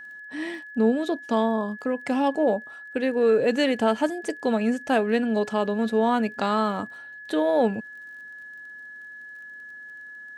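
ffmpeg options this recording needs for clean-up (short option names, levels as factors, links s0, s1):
-af "adeclick=t=4,bandreject=f=1700:w=30"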